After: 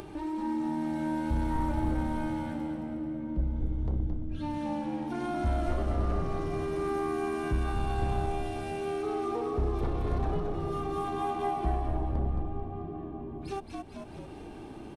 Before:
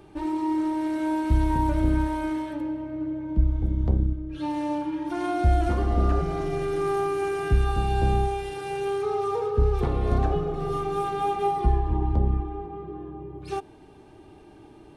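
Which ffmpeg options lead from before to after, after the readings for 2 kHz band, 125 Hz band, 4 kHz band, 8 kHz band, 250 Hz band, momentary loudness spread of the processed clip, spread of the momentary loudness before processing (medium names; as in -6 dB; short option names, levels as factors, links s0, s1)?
-5.5 dB, -7.0 dB, -5.5 dB, -5.5 dB, -5.0 dB, 8 LU, 8 LU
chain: -filter_complex "[0:a]aeval=exprs='0.266*(cos(1*acos(clip(val(0)/0.266,-1,1)))-cos(1*PI/2))+0.0237*(cos(5*acos(clip(val(0)/0.266,-1,1)))-cos(5*PI/2))':c=same,asplit=6[s0][s1][s2][s3][s4][s5];[s1]adelay=220,afreqshift=-78,volume=0.562[s6];[s2]adelay=440,afreqshift=-156,volume=0.243[s7];[s3]adelay=660,afreqshift=-234,volume=0.104[s8];[s4]adelay=880,afreqshift=-312,volume=0.0447[s9];[s5]adelay=1100,afreqshift=-390,volume=0.0193[s10];[s0][s6][s7][s8][s9][s10]amix=inputs=6:normalize=0,acompressor=mode=upward:threshold=0.0631:ratio=2.5,volume=0.355"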